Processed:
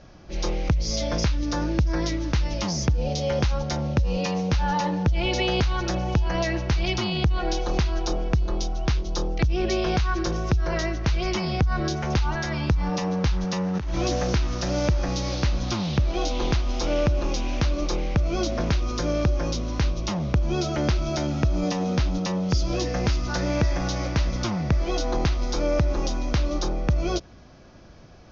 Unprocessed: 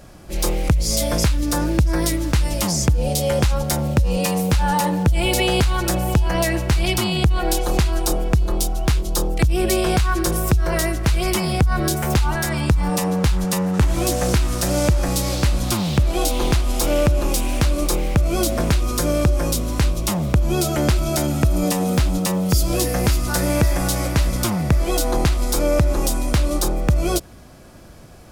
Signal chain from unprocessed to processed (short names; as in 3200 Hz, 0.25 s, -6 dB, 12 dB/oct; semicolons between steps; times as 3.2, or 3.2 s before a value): steep low-pass 6400 Hz 96 dB/oct; 13.75–14.22 negative-ratio compressor -20 dBFS, ratio -1; gain -5 dB